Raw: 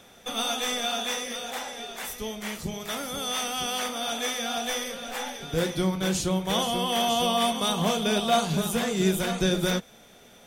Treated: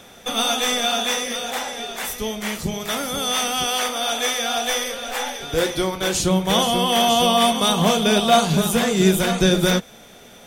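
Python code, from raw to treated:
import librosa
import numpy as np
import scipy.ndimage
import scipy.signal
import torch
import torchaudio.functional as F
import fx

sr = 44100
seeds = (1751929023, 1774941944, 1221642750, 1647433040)

y = fx.peak_eq(x, sr, hz=180.0, db=-12.0, octaves=0.74, at=(3.64, 6.2))
y = y * librosa.db_to_amplitude(7.5)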